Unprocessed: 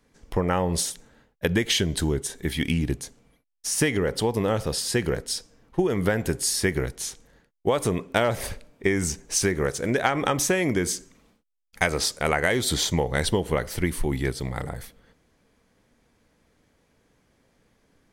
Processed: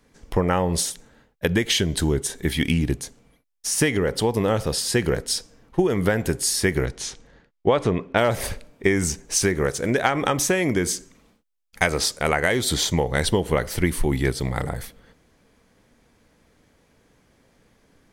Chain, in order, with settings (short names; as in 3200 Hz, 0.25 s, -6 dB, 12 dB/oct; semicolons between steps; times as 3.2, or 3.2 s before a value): 6.85–8.17 LPF 6900 Hz -> 2900 Hz 12 dB/oct; in parallel at -0.5 dB: vocal rider within 4 dB 0.5 s; on the sum: gain -3 dB